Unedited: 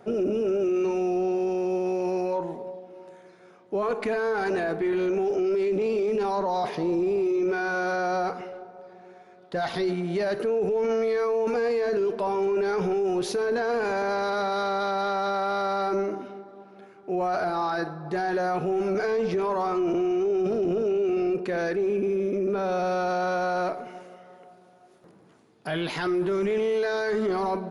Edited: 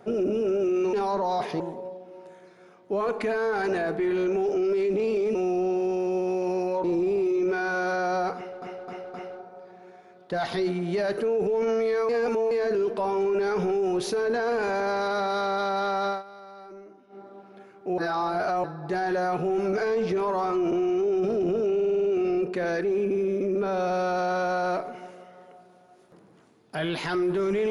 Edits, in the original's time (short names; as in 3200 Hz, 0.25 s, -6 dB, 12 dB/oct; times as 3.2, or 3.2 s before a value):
0.93–2.42 swap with 6.17–6.84
8.36–8.62 loop, 4 plays
11.31–11.73 reverse
15.32–16.44 dip -18.5 dB, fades 0.13 s
17.2–17.86 reverse
20.96 stutter 0.05 s, 7 plays